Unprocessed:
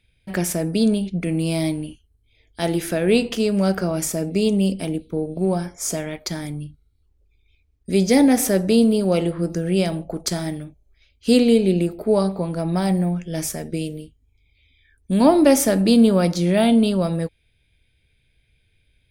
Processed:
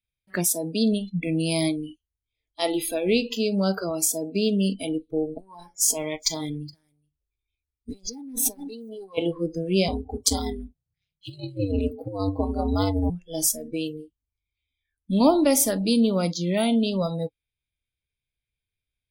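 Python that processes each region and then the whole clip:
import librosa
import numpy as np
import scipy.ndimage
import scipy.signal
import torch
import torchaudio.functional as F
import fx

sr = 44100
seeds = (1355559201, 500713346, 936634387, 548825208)

y = fx.chain(x, sr, fx.tube_stage(drive_db=12.0, bias=0.75),
    fx.echo_single(ms=420, db=-17.0),
    fx.over_compress(threshold_db=-30.0, ratio=-1.0), at=(5.36, 9.18))
y = fx.chain(y, sr, fx.ring_mod(carrier_hz=98.0),
    fx.over_compress(threshold_db=-23.0, ratio=-0.5), at=(9.88, 13.1))
y = fx.high_shelf(y, sr, hz=4600.0, db=9.5)
y = fx.noise_reduce_blind(y, sr, reduce_db=25)
y = fx.rider(y, sr, range_db=3, speed_s=0.5)
y = y * 10.0 ** (-3.5 / 20.0)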